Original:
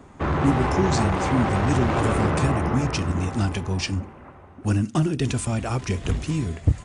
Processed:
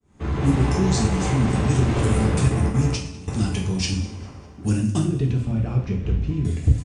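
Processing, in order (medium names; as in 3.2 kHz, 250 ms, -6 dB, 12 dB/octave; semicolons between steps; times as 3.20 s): fade-in on the opening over 0.53 s; de-hum 50.47 Hz, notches 5; 2.48–3.28 s: gate with hold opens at -13 dBFS; peaking EQ 1 kHz -11.5 dB 2.9 oct; in parallel at -0.5 dB: compression, threshold -32 dBFS, peak gain reduction 16 dB; 5.04–6.45 s: on the sum: tape spacing loss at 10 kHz 36 dB; on a send: feedback delay 200 ms, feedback 41%, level -21.5 dB; on the sum: two-slope reverb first 0.53 s, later 1.7 s, from -16 dB, DRR 0 dB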